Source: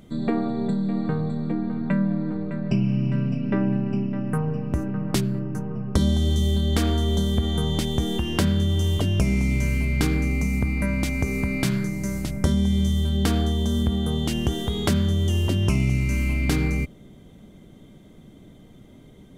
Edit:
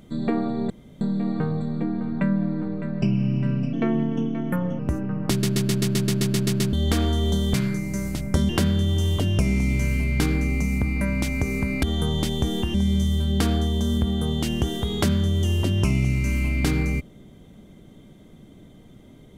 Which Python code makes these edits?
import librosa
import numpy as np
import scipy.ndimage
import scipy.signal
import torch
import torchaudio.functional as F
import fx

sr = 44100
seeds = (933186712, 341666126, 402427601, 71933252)

y = fx.edit(x, sr, fx.insert_room_tone(at_s=0.7, length_s=0.31),
    fx.speed_span(start_s=3.42, length_s=1.22, speed=1.15),
    fx.stutter_over(start_s=5.15, slice_s=0.13, count=11),
    fx.swap(start_s=7.39, length_s=0.91, other_s=11.64, other_length_s=0.95), tone=tone)